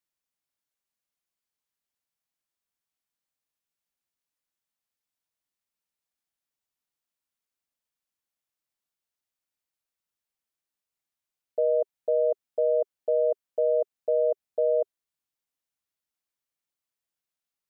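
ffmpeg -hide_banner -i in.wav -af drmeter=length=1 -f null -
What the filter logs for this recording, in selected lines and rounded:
Channel 1: DR: 6.1
Overall DR: 6.1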